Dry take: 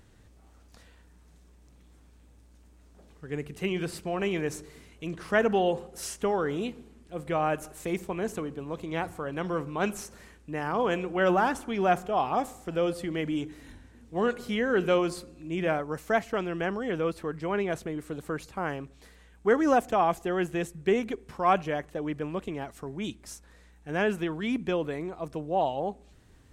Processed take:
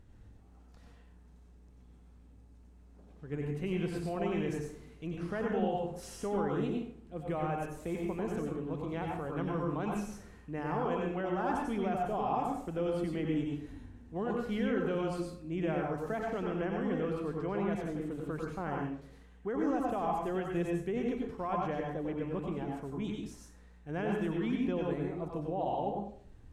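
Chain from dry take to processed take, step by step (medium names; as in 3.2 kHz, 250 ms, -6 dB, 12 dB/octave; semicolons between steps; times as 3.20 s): tilt EQ -2 dB/octave; peak limiter -19.5 dBFS, peak gain reduction 10 dB; plate-style reverb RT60 0.52 s, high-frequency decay 0.75×, pre-delay 80 ms, DRR -0.5 dB; trim -8 dB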